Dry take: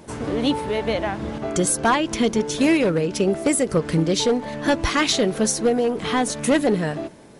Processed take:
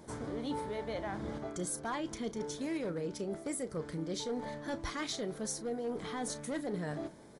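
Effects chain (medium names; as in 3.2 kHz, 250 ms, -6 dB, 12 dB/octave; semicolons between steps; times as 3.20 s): peaking EQ 2.7 kHz -12.5 dB 0.22 oct; reverse; compression 6:1, threshold -26 dBFS, peak gain reduction 11.5 dB; reverse; doubling 34 ms -13.5 dB; trim -9 dB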